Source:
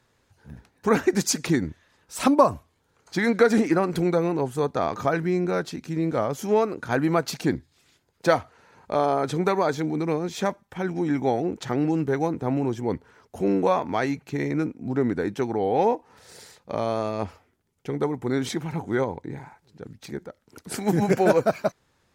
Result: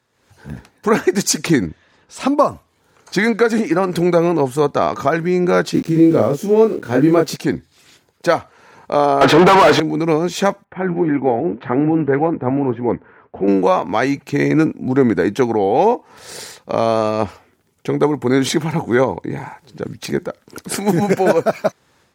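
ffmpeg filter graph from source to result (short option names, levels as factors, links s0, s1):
-filter_complex "[0:a]asettb=1/sr,asplit=3[s0][s1][s2];[s0]atrim=end=1.664[s3];[s1]atrim=start=1.66:end=2.28,asetpts=PTS-STARTPTS,afade=t=in:d=0.004:c=qsin,afade=t=out:st=0.616:d=0.004:c=qsin,adynamicsmooth=sensitivity=2.5:basefreq=5500,equalizer=f=1300:w=0.67:g=-3[s4];[s2]atrim=start=2.276[s5];[s3][s4]acrossfade=d=0.004:c1=hsin:c2=qsin[s6];[s6][s5]acrossfade=d=0.004:c1=qsin:c2=hsin,asettb=1/sr,asplit=3[s7][s8][s9];[s7]atrim=end=5.744[s10];[s8]atrim=start=5.74:end=7.36,asetpts=PTS-STARTPTS,afade=t=in:d=0.004:c=qsin,afade=t=out:st=1.616:d=0.004:c=qsin,aeval=exprs='val(0)*gte(abs(val(0)),0.00841)':c=same,lowshelf=f=590:t=q:w=1.5:g=7,asplit=2[s11][s12];[s12]adelay=27,volume=0.668[s13];[s11][s13]amix=inputs=2:normalize=0,atrim=end_sample=71442[s14];[s9]atrim=start=7.356[s15];[s10][s14]acrossfade=d=0.004:c1=hsin:c2=qsin[s16];[s16][s15]acrossfade=d=0.004:c1=qsin:c2=hsin,asettb=1/sr,asplit=3[s17][s18][s19];[s17]atrim=end=9.214[s20];[s18]atrim=start=9.21:end=9.8,asetpts=PTS-STARTPTS,afade=t=in:d=0.004:c=qsin,afade=t=out:st=0.586:d=0.004:c=qsin,highpass=120,lowpass=4200,aecho=1:1:6.2:0.36,atrim=end_sample=26019,asplit=2[s21][s22];[s22]highpass=f=720:p=1,volume=63.1,asoftclip=type=tanh:threshold=0.335[s23];[s21][s23]amix=inputs=2:normalize=0,lowpass=f=1600:p=1,volume=0.501[s24];[s19]atrim=start=9.796[s25];[s20][s24]acrossfade=d=0.004:c1=hsin:c2=qsin[s26];[s26][s25]acrossfade=d=0.004:c1=qsin:c2=hsin,asettb=1/sr,asplit=3[s27][s28][s29];[s27]atrim=end=10.644[s30];[s28]atrim=start=10.64:end=13.48,asetpts=PTS-STARTPTS,afade=t=in:d=0.004:c=qsin,afade=t=out:st=2.836:d=0.004:c=qsin,lowpass=f=2300:w=0.5412,lowpass=f=2300:w=1.3066,flanger=delay=2.3:depth=9.6:regen=73:speed=1.8:shape=triangular[s31];[s29]atrim=start=13.476[s32];[s30][s31]acrossfade=d=0.004:c1=hsin:c2=qsin[s33];[s33][s32]acrossfade=d=0.004:c1=qsin:c2=hsin,highpass=f=130:p=1,dynaudnorm=f=110:g=5:m=6.68,volume=0.891"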